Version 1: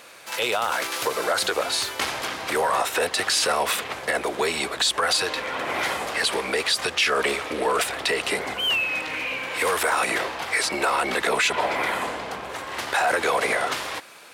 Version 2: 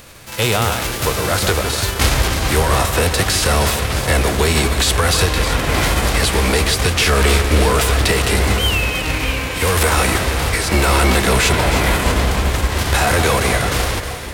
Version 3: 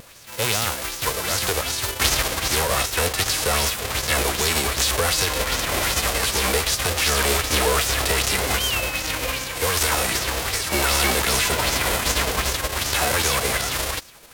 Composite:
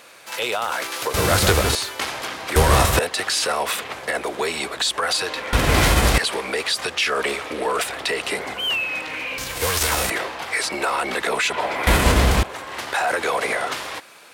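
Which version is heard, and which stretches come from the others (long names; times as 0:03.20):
1
0:01.14–0:01.75: punch in from 2
0:02.56–0:02.99: punch in from 2
0:05.53–0:06.18: punch in from 2
0:09.38–0:10.10: punch in from 3
0:11.87–0:12.43: punch in from 2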